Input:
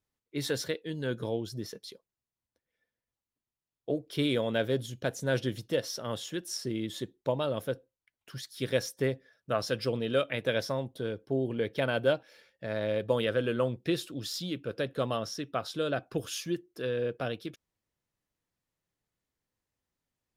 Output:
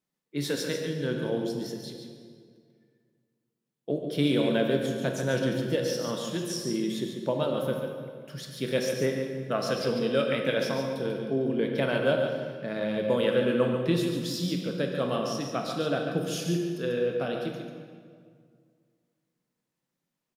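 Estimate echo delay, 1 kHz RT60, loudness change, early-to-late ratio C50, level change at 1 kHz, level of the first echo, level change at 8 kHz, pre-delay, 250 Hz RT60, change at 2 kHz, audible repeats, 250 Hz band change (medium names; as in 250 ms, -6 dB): 142 ms, 1.9 s, +3.5 dB, 2.0 dB, +3.0 dB, -7.0 dB, +2.0 dB, 15 ms, 2.3 s, +2.5 dB, 1, +6.0 dB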